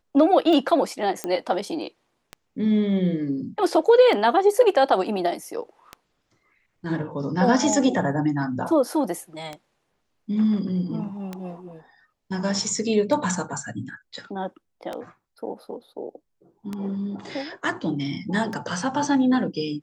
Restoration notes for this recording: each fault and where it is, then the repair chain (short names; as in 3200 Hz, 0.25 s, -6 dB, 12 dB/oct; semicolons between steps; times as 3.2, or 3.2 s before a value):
tick 33 1/3 rpm
1.24 pop -13 dBFS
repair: de-click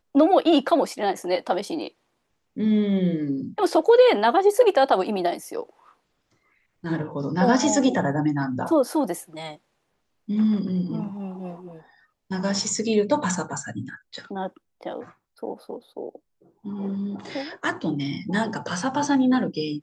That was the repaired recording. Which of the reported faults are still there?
none